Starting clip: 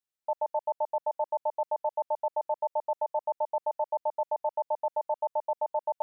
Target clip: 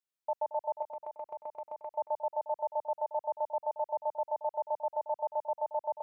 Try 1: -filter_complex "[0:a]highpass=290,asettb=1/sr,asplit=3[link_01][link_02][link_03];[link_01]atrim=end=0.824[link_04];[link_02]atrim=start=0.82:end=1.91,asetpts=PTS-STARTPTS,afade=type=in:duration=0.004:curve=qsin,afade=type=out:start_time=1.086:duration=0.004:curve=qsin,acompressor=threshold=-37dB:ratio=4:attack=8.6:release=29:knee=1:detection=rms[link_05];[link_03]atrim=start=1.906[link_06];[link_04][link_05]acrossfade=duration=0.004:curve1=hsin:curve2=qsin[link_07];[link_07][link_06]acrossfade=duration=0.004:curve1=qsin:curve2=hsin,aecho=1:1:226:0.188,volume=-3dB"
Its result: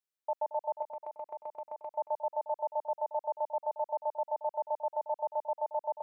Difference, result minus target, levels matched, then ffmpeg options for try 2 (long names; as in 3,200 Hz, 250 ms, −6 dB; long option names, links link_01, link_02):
125 Hz band −6.0 dB
-filter_complex "[0:a]highpass=90,asettb=1/sr,asplit=3[link_01][link_02][link_03];[link_01]atrim=end=0.824[link_04];[link_02]atrim=start=0.82:end=1.91,asetpts=PTS-STARTPTS,afade=type=in:duration=0.004:curve=qsin,afade=type=out:start_time=1.086:duration=0.004:curve=qsin,acompressor=threshold=-37dB:ratio=4:attack=8.6:release=29:knee=1:detection=rms[link_05];[link_03]atrim=start=1.906[link_06];[link_04][link_05]acrossfade=duration=0.004:curve1=hsin:curve2=qsin[link_07];[link_07][link_06]acrossfade=duration=0.004:curve1=qsin:curve2=hsin,aecho=1:1:226:0.188,volume=-3dB"